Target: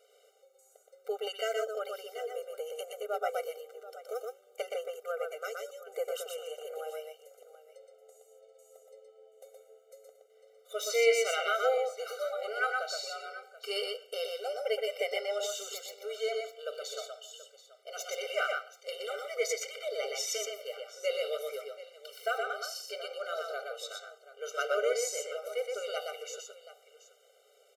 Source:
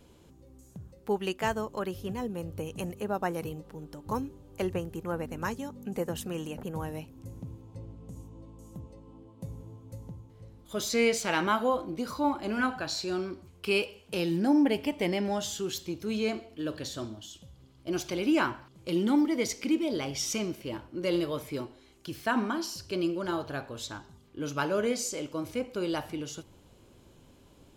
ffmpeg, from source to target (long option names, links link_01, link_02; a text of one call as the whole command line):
ffmpeg -i in.wav -af "aecho=1:1:121|730:0.668|0.158,afftfilt=real='re*eq(mod(floor(b*sr/1024/390),2),1)':imag='im*eq(mod(floor(b*sr/1024/390),2),1)':win_size=1024:overlap=0.75" out.wav